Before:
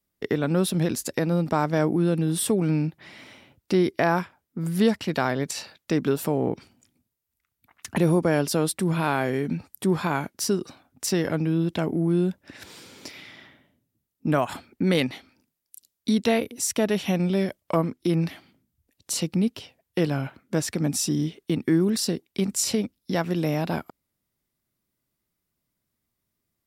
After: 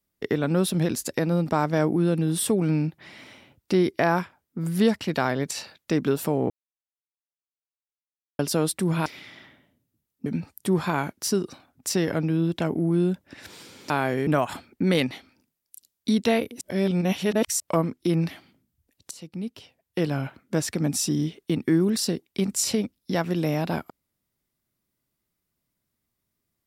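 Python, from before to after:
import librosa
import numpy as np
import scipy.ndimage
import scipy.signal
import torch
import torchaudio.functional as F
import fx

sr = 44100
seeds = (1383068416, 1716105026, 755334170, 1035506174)

y = fx.edit(x, sr, fx.silence(start_s=6.5, length_s=1.89),
    fx.swap(start_s=9.06, length_s=0.37, other_s=13.07, other_length_s=1.2),
    fx.reverse_span(start_s=16.61, length_s=0.99),
    fx.fade_in_from(start_s=19.11, length_s=1.13, floor_db=-21.0), tone=tone)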